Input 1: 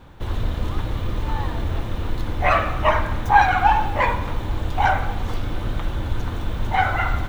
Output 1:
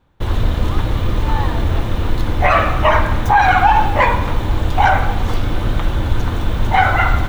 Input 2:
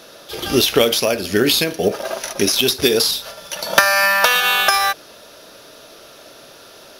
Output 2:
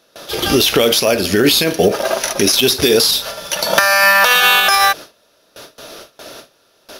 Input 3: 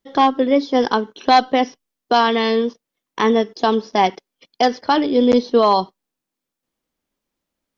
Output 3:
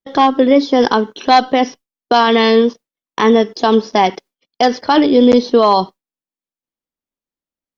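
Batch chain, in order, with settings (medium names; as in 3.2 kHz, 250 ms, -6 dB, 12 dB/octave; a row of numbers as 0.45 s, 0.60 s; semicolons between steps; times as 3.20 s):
gate with hold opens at -31 dBFS; peak limiter -9.5 dBFS; peak normalisation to -2 dBFS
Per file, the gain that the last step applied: +7.5 dB, +7.5 dB, +7.5 dB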